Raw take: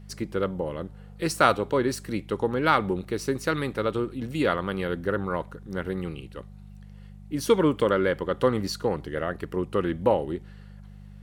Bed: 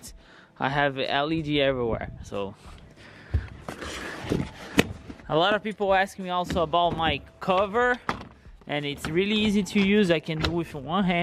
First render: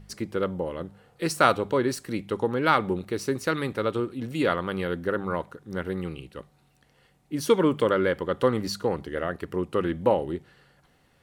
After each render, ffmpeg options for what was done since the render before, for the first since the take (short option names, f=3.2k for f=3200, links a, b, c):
-af "bandreject=f=50:t=h:w=4,bandreject=f=100:t=h:w=4,bandreject=f=150:t=h:w=4,bandreject=f=200:t=h:w=4"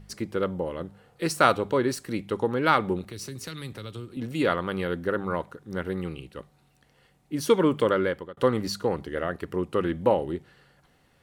-filter_complex "[0:a]asettb=1/sr,asplit=3[a][b][c];[a]atrim=end=3.044[d];[b]atrim=start=3.04:end=4.17,asetpts=PTS-STARTPTS,afade=t=in:d=0.004:c=qsin,afade=t=out:st=1.126:d=0.004:c=qsin,acrossover=split=150|3000[e][f][g];[f]acompressor=threshold=-40dB:ratio=6:attack=3.2:release=140:knee=2.83:detection=peak[h];[e][h][g]amix=inputs=3:normalize=0[i];[c]atrim=start=4.166[j];[d][i]acrossfade=d=0.004:c1=hsin:c2=qsin[k];[k][j]acrossfade=d=0.004:c1=qsin:c2=hsin,asplit=2[l][m];[l]atrim=end=8.37,asetpts=PTS-STARTPTS,afade=t=out:st=7.85:d=0.52:c=qsin[n];[m]atrim=start=8.37,asetpts=PTS-STARTPTS,afade=t=in:d=0.004:c=hsin[o];[n][o]concat=n=2:v=0:a=1"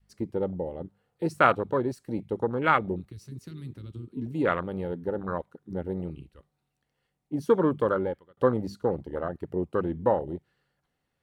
-af "adynamicequalizer=threshold=0.0178:dfrequency=320:dqfactor=0.8:tfrequency=320:tqfactor=0.8:attack=5:release=100:ratio=0.375:range=2.5:mode=cutabove:tftype=bell,afwtdn=0.0398"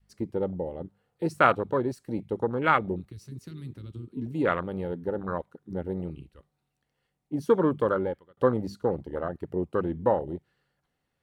-af anull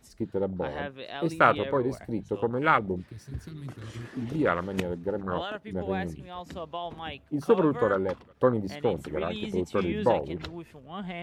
-filter_complex "[1:a]volume=-13dB[a];[0:a][a]amix=inputs=2:normalize=0"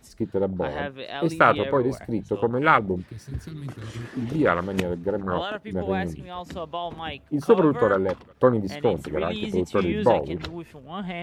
-af "volume=4.5dB,alimiter=limit=-3dB:level=0:latency=1"